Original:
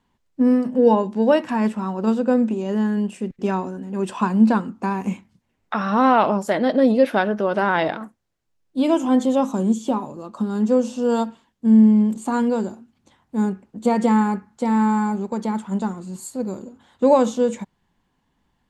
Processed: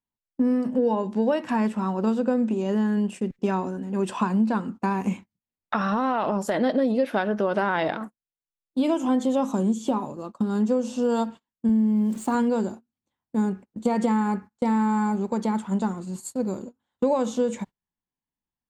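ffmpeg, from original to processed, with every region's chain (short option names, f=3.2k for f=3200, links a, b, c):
-filter_complex "[0:a]asettb=1/sr,asplit=3[a][b][c];[a]atrim=end=5.764[d];[b]atrim=start=5.76:end=6.6,asetpts=PTS-STARTPTS,afade=t=in:d=0.004:c=qsin,afade=t=out:st=0.836:d=0.004:c=qsin,bandreject=f=2.2k:w=13,acompressor=threshold=-19dB:ratio=4:attack=3.2:release=140:knee=1:detection=peak[e];[c]atrim=start=6.596[f];[d][e]acrossfade=d=0.004:c1=hsin:c2=qsin[g];[g][f]acrossfade=d=0.004:c1=qsin:c2=hsin,asettb=1/sr,asplit=3[h][i][j];[h]atrim=end=11.694[k];[i]atrim=start=11.69:end=12.35,asetpts=PTS-STARTPTS,afade=t=in:d=0.004:c=qsin,afade=t=out:st=0.656:d=0.004:c=qsin,highpass=75,aeval=exprs='val(0)*gte(abs(val(0)),0.00841)':c=same[l];[j]atrim=start=12.346[m];[k][l]acrossfade=d=0.004:c1=hsin:c2=qsin[n];[n][m]acrossfade=d=0.004:c1=qsin:c2=hsin,agate=range=-26dB:threshold=-35dB:ratio=16:detection=peak,acompressor=threshold=-19dB:ratio=6"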